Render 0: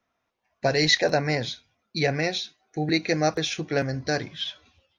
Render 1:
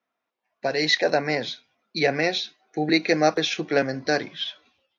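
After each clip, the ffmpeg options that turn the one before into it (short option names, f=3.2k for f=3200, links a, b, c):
-filter_complex "[0:a]acrossover=split=180 5800:gain=0.0794 1 0.178[a][b][c];[a][b][c]amix=inputs=3:normalize=0,dynaudnorm=f=230:g=7:m=11.5dB,volume=-4.5dB"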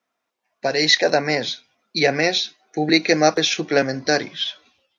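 -af "equalizer=f=6.2k:t=o:w=1.1:g=6,volume=3.5dB"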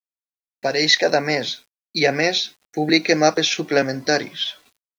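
-af "acrusher=bits=8:mix=0:aa=0.000001"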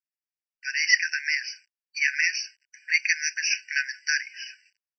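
-af "aresample=16000,aresample=44100,afftfilt=real='re*eq(mod(floor(b*sr/1024/1500),2),1)':imag='im*eq(mod(floor(b*sr/1024/1500),2),1)':win_size=1024:overlap=0.75"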